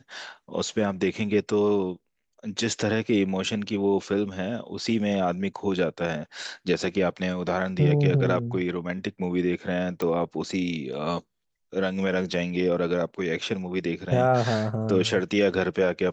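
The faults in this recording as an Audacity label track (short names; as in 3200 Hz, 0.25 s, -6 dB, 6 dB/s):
10.020000	10.020000	pop -16 dBFS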